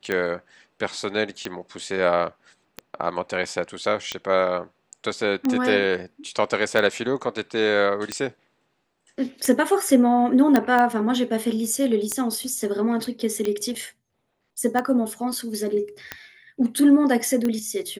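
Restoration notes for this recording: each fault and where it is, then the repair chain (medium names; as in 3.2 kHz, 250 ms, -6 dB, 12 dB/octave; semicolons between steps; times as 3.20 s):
tick 45 rpm -12 dBFS
10.56 s: pop -6 dBFS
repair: de-click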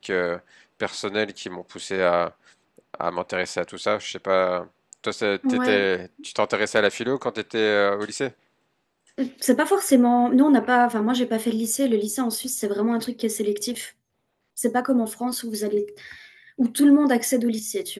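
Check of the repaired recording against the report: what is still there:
nothing left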